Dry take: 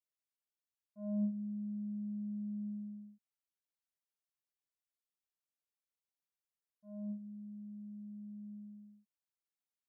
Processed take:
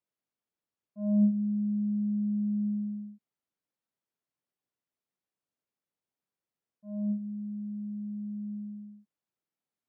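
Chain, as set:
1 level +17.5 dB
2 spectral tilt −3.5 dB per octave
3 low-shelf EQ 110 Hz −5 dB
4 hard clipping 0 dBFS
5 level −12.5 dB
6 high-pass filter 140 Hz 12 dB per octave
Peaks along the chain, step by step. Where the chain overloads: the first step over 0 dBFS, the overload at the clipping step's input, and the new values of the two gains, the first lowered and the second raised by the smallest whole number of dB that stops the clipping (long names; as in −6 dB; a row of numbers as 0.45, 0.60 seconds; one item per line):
−10.5, −3.0, −4.0, −4.0, −16.5, −16.5 dBFS
no step passes full scale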